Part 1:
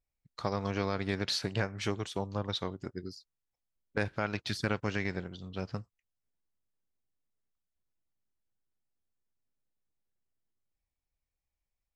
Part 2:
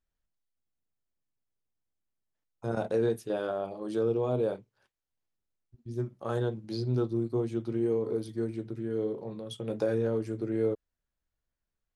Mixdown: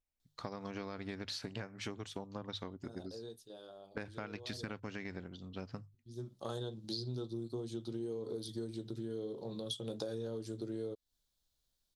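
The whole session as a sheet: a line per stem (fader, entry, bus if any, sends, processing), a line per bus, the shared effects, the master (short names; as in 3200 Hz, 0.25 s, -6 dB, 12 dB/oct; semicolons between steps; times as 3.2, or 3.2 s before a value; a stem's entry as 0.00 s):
-5.0 dB, 0.00 s, no send, bell 260 Hz +6 dB 0.37 oct; notches 50/100/150 Hz
+0.5 dB, 0.20 s, no send, resonant high shelf 2900 Hz +8.5 dB, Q 3; auto duck -21 dB, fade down 1.85 s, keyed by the first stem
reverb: off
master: compressor 6:1, threshold -38 dBFS, peak gain reduction 14.5 dB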